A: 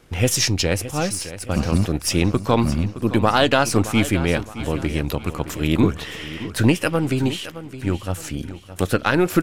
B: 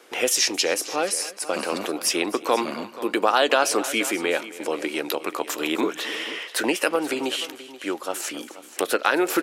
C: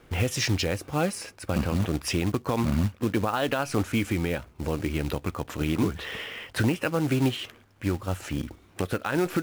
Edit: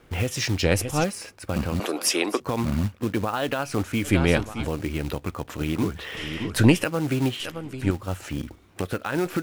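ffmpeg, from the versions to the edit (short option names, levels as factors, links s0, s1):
-filter_complex "[0:a]asplit=4[s0][s1][s2][s3];[2:a]asplit=6[s4][s5][s6][s7][s8][s9];[s4]atrim=end=0.632[s10];[s0]atrim=start=0.628:end=1.042[s11];[s5]atrim=start=1.038:end=1.802[s12];[1:a]atrim=start=1.798:end=2.402[s13];[s6]atrim=start=2.398:end=4.13[s14];[s1]atrim=start=4.03:end=4.7[s15];[s7]atrim=start=4.6:end=6.172[s16];[s2]atrim=start=6.168:end=6.842[s17];[s8]atrim=start=6.838:end=7.402[s18];[s3]atrim=start=7.398:end=7.912[s19];[s9]atrim=start=7.908[s20];[s10][s11]acrossfade=d=0.004:c1=hsin:c2=hsin[s21];[s21][s12]acrossfade=d=0.004:c1=hsin:c2=hsin[s22];[s22][s13]acrossfade=d=0.004:c1=hsin:c2=hsin[s23];[s23][s14]acrossfade=d=0.004:c1=hsin:c2=hsin[s24];[s24][s15]acrossfade=d=0.1:c1=tri:c2=tri[s25];[s25][s16]acrossfade=d=0.1:c1=tri:c2=tri[s26];[s26][s17]acrossfade=d=0.004:c1=hsin:c2=hsin[s27];[s27][s18]acrossfade=d=0.004:c1=hsin:c2=hsin[s28];[s28][s19]acrossfade=d=0.004:c1=hsin:c2=hsin[s29];[s29][s20]acrossfade=d=0.004:c1=hsin:c2=hsin"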